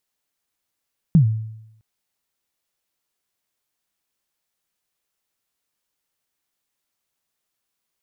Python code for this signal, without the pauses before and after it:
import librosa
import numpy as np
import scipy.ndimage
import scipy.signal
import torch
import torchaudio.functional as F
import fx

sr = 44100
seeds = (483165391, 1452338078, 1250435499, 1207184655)

y = fx.drum_kick(sr, seeds[0], length_s=0.66, level_db=-7, start_hz=180.0, end_hz=110.0, sweep_ms=103.0, decay_s=0.83, click=False)